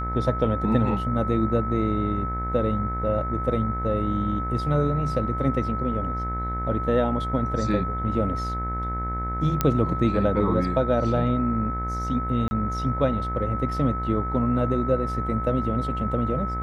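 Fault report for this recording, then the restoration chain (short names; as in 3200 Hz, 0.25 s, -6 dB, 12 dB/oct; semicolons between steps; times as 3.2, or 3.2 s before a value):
buzz 60 Hz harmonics 38 -30 dBFS
tone 1300 Hz -29 dBFS
9.61 pop -7 dBFS
12.48–12.51 gap 30 ms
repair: de-click; de-hum 60 Hz, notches 38; notch 1300 Hz, Q 30; interpolate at 12.48, 30 ms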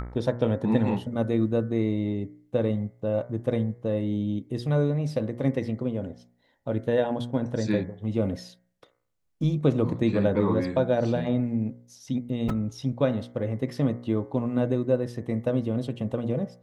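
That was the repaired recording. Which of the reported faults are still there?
none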